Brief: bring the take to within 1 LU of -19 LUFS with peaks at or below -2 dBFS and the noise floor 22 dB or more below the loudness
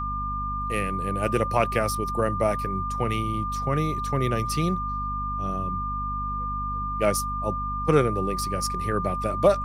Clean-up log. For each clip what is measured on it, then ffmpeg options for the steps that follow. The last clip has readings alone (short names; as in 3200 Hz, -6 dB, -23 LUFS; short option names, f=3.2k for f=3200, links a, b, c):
hum 50 Hz; harmonics up to 250 Hz; hum level -31 dBFS; steady tone 1200 Hz; tone level -28 dBFS; loudness -26.0 LUFS; peak -6.5 dBFS; loudness target -19.0 LUFS
-> -af "bandreject=f=50:t=h:w=6,bandreject=f=100:t=h:w=6,bandreject=f=150:t=h:w=6,bandreject=f=200:t=h:w=6,bandreject=f=250:t=h:w=6"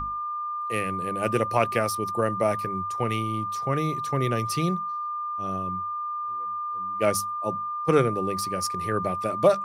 hum none; steady tone 1200 Hz; tone level -28 dBFS
-> -af "bandreject=f=1.2k:w=30"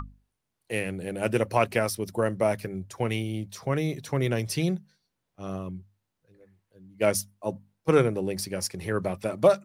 steady tone none; loudness -28.0 LUFS; peak -7.0 dBFS; loudness target -19.0 LUFS
-> -af "volume=9dB,alimiter=limit=-2dB:level=0:latency=1"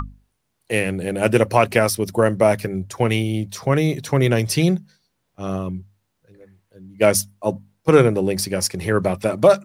loudness -19.5 LUFS; peak -2.0 dBFS; noise floor -73 dBFS